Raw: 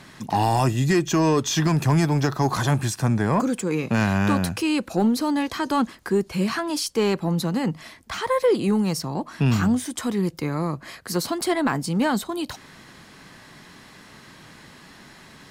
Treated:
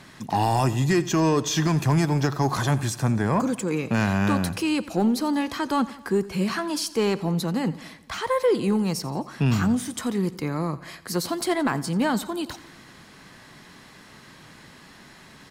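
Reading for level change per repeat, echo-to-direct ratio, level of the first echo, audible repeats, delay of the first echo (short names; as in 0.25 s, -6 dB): -4.5 dB, -16.5 dB, -18.5 dB, 4, 87 ms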